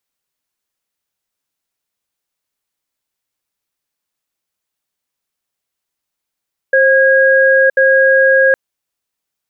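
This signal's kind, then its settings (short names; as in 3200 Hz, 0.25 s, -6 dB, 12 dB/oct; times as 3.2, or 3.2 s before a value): cadence 532 Hz, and 1640 Hz, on 0.97 s, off 0.07 s, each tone -9.5 dBFS 1.81 s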